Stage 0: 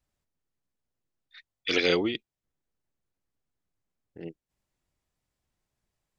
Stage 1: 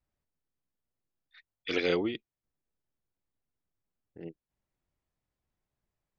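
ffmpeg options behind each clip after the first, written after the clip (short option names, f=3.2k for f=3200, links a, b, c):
-af "highshelf=f=3.6k:g=-11,volume=-3dB"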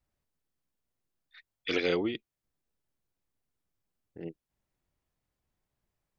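-af "alimiter=limit=-19dB:level=0:latency=1:release=482,volume=2.5dB"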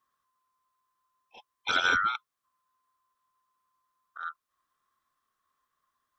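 -af "afftfilt=real='real(if(lt(b,960),b+48*(1-2*mod(floor(b/48),2)),b),0)':imag='imag(if(lt(b,960),b+48*(1-2*mod(floor(b/48),2)),b),0)':win_size=2048:overlap=0.75,volume=3dB"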